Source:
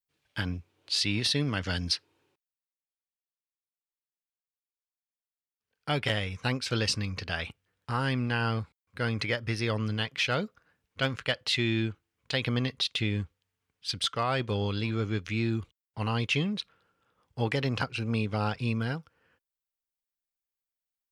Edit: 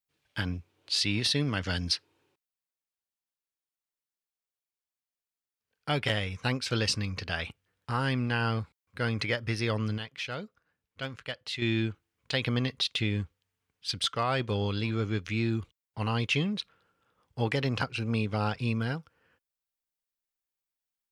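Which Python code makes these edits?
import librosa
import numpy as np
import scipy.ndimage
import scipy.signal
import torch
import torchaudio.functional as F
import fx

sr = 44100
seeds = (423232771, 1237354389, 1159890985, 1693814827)

y = fx.edit(x, sr, fx.clip_gain(start_s=9.98, length_s=1.64, db=-8.0), tone=tone)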